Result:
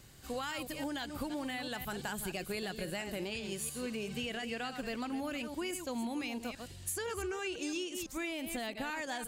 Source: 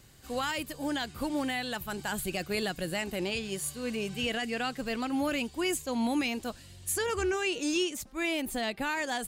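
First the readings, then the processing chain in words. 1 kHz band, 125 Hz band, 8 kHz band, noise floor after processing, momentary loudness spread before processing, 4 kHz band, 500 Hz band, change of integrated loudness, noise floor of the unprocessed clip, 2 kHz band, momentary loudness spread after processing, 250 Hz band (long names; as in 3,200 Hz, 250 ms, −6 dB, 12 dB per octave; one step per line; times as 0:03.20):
−6.5 dB, −5.0 dB, −5.5 dB, −49 dBFS, 5 LU, −6.5 dB, −6.5 dB, −6.5 dB, −51 dBFS, −6.5 dB, 2 LU, −6.5 dB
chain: delay that plays each chunk backwards 168 ms, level −10 dB
downward compressor, threshold −35 dBFS, peak gain reduction 10.5 dB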